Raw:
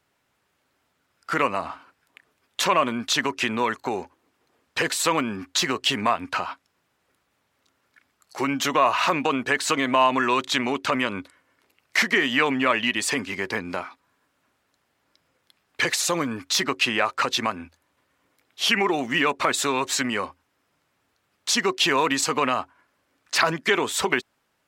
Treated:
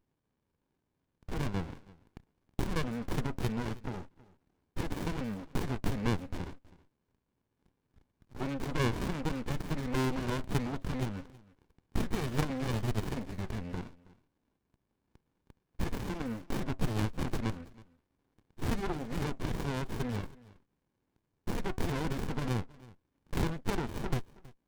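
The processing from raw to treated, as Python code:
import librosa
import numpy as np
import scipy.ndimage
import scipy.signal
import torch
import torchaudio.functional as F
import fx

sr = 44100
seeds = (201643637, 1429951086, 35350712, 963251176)

y = fx.self_delay(x, sr, depth_ms=0.48)
y = fx.dynamic_eq(y, sr, hz=2500.0, q=2.7, threshold_db=-39.0, ratio=4.0, max_db=-6)
y = y + 10.0 ** (-21.5 / 20.0) * np.pad(y, (int(322 * sr / 1000.0), 0))[:len(y)]
y = fx.running_max(y, sr, window=65)
y = y * 10.0 ** (-5.5 / 20.0)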